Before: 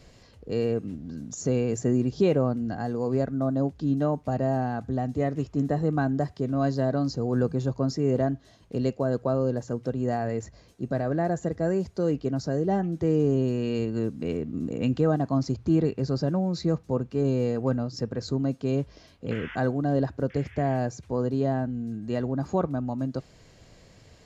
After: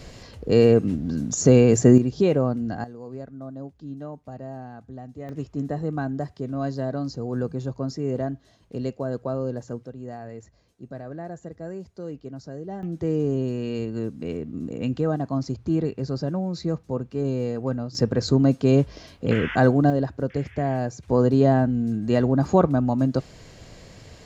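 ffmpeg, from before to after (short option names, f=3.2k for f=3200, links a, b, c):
-af "asetnsamples=n=441:p=0,asendcmd='1.98 volume volume 2dB;2.84 volume volume -11dB;5.29 volume volume -2.5dB;9.83 volume volume -9.5dB;12.83 volume volume -1dB;17.95 volume volume 8.5dB;19.9 volume volume 1dB;21.08 volume volume 8dB',volume=10.5dB"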